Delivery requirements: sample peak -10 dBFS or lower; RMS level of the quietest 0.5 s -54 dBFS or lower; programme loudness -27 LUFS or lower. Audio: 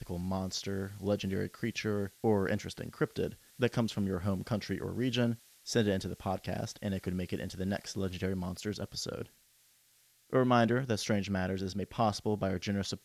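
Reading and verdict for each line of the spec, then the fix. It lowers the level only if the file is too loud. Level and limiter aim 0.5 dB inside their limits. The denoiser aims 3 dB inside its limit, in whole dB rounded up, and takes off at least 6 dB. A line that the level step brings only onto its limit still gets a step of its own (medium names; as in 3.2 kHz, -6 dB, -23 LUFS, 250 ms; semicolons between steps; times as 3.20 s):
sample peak -13.0 dBFS: pass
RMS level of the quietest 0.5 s -67 dBFS: pass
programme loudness -34.0 LUFS: pass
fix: none needed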